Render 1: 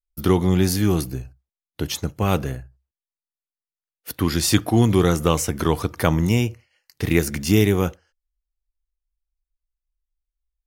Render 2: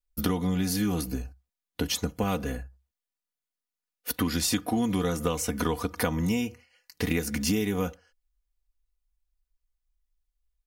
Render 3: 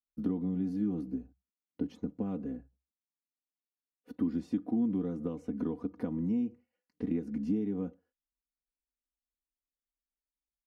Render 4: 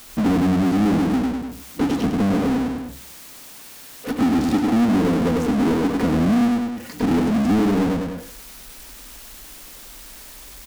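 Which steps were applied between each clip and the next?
comb 4.1 ms, depth 73%; compression, threshold -24 dBFS, peak gain reduction 12.5 dB
band-pass filter 260 Hz, Q 2.2; trim -1 dB
feedback delay 100 ms, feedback 24%, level -6.5 dB; power-law waveshaper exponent 0.35; trim +7 dB

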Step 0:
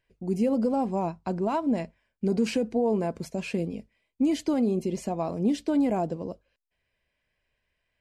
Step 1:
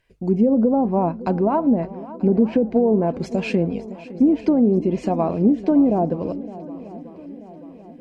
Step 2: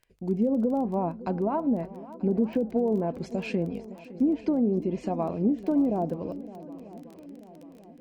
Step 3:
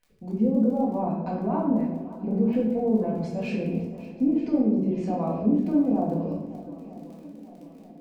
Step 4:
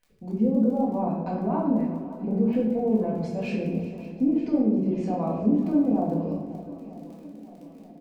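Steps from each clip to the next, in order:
low-pass that closes with the level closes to 580 Hz, closed at -20.5 dBFS; shuffle delay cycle 936 ms, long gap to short 1.5:1, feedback 49%, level -17 dB; trim +8.5 dB
crackle 18 per s -30 dBFS; trim -8 dB
simulated room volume 330 m³, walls mixed, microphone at 1.9 m; trim -5.5 dB
delay 389 ms -16.5 dB

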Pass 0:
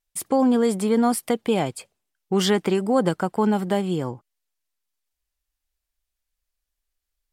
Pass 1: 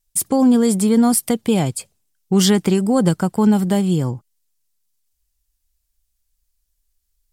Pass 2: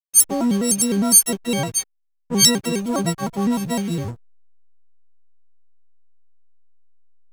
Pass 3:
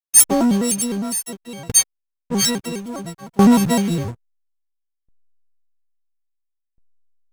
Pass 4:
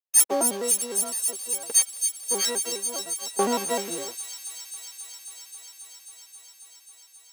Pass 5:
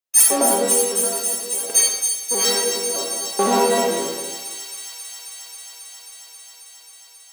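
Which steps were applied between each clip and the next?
tone controls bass +12 dB, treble +11 dB
partials quantised in pitch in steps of 6 st; hysteresis with a dead band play -20.5 dBFS; vibrato with a chosen wave square 4.9 Hz, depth 160 cents; trim -6 dB
waveshaping leveller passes 3; sawtooth tremolo in dB decaying 0.59 Hz, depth 25 dB
ladder high-pass 340 Hz, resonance 30%; feedback echo behind a high-pass 269 ms, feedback 85%, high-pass 3.3 kHz, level -6.5 dB
algorithmic reverb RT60 1.2 s, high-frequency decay 0.65×, pre-delay 10 ms, DRR -3 dB; trim +3.5 dB

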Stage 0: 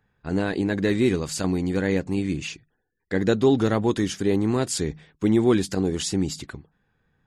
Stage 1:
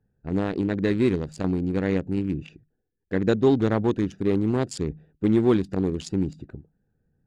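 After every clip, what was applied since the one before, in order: local Wiener filter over 41 samples; treble shelf 7.5 kHz -11.5 dB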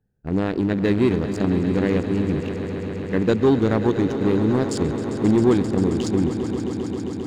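waveshaping leveller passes 1; echo with a slow build-up 133 ms, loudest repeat 5, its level -13 dB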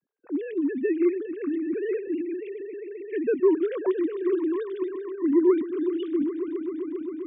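formants replaced by sine waves; trim -5.5 dB

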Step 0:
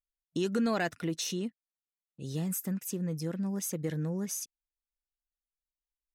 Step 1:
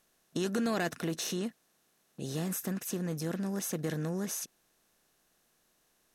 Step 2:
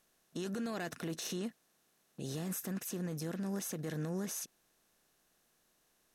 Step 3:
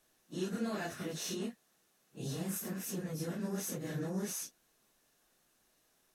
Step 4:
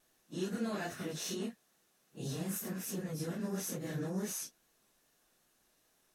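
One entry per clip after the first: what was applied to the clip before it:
spectral levelling over time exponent 0.6; trim -3.5 dB
peak limiter -28.5 dBFS, peak gain reduction 7.5 dB; trim -2 dB
phase randomisation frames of 100 ms; trim +1 dB
vibrato 2.4 Hz 37 cents

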